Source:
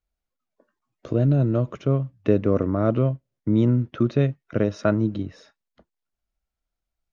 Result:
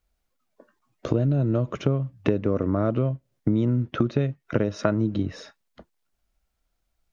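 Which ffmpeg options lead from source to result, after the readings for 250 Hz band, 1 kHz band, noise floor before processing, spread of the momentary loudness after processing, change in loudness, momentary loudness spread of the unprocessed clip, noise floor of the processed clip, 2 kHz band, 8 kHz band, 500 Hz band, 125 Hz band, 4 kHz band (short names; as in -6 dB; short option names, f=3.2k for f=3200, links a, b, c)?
-2.0 dB, -0.5 dB, -85 dBFS, 6 LU, -2.5 dB, 6 LU, -77 dBFS, 0.0 dB, n/a, -2.5 dB, -2.5 dB, +3.0 dB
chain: -af "acompressor=threshold=-28dB:ratio=6,volume=8.5dB"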